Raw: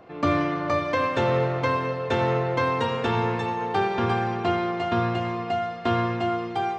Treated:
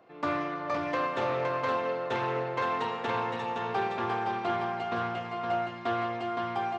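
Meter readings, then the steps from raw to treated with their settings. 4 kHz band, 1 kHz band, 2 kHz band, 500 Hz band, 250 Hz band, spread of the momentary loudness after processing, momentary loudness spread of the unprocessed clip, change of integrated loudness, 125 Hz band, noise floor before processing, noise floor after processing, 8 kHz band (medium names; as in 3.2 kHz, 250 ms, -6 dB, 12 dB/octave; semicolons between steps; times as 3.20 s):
-6.5 dB, -4.5 dB, -5.0 dB, -6.5 dB, -9.5 dB, 3 LU, 4 LU, -6.0 dB, -13.5 dB, -34 dBFS, -40 dBFS, no reading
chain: high-pass 99 Hz; bass shelf 230 Hz -6.5 dB; delay 516 ms -4.5 dB; dynamic bell 950 Hz, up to +4 dB, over -33 dBFS, Q 0.78; loudspeaker Doppler distortion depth 0.15 ms; trim -8.5 dB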